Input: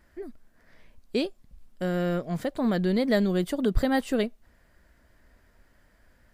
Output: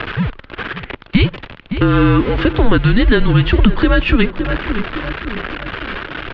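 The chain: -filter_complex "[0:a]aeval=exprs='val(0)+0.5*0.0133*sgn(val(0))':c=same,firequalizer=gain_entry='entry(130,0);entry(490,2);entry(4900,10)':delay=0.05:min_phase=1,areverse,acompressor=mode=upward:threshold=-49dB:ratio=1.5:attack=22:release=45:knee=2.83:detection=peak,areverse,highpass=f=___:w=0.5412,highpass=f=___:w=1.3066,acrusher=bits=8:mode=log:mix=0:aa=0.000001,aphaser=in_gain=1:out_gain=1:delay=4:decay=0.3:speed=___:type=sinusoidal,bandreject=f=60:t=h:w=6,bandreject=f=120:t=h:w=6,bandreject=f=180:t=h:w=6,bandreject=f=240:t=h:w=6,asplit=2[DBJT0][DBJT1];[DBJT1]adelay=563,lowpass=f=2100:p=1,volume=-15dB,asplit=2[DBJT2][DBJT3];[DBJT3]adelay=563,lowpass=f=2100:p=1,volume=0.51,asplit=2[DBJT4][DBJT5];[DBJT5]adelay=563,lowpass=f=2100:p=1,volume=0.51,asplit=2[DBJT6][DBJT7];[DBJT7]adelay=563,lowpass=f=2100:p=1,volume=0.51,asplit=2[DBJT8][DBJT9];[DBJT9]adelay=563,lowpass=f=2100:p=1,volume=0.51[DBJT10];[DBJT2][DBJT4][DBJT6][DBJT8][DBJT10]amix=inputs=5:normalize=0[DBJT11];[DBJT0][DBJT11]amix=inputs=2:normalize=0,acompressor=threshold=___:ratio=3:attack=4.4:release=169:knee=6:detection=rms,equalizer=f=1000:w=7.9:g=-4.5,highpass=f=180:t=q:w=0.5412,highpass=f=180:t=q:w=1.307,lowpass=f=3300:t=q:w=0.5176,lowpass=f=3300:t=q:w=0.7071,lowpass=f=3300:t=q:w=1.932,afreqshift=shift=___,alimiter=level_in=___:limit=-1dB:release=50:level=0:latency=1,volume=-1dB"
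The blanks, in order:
100, 100, 1.1, -24dB, -220, 19dB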